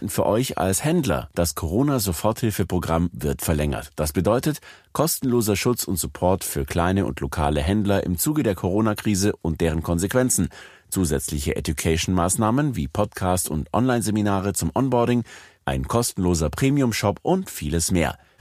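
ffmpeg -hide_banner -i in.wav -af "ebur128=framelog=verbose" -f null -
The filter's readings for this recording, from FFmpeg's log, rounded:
Integrated loudness:
  I:         -22.5 LUFS
  Threshold: -32.6 LUFS
Loudness range:
  LRA:         1.1 LU
  Threshold: -42.6 LUFS
  LRA low:   -23.2 LUFS
  LRA high:  -22.1 LUFS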